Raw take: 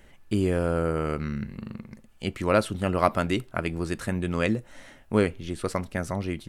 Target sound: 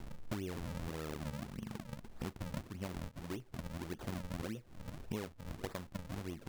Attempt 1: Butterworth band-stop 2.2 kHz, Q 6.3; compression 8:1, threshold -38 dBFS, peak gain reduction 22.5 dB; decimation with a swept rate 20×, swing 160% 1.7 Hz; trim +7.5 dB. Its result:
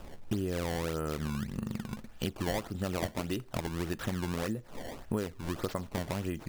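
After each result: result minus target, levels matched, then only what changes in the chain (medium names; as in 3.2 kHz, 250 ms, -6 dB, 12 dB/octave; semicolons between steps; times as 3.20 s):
compression: peak gain reduction -8.5 dB; decimation with a swept rate: distortion -7 dB
change: compression 8:1, threshold -47.5 dBFS, peak gain reduction 30.5 dB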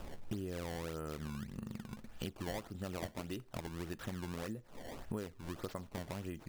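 decimation with a swept rate: distortion -8 dB
change: decimation with a swept rate 70×, swing 160% 1.7 Hz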